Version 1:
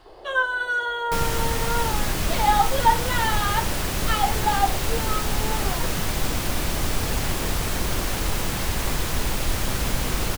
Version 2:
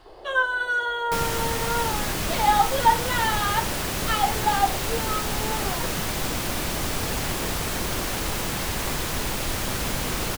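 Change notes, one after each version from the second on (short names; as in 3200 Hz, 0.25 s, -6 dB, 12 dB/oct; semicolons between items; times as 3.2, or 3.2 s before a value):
second sound: add low shelf 82 Hz -8.5 dB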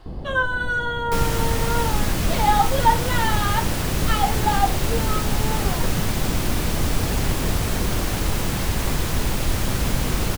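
first sound: remove elliptic high-pass 360 Hz; master: add low shelf 260 Hz +9.5 dB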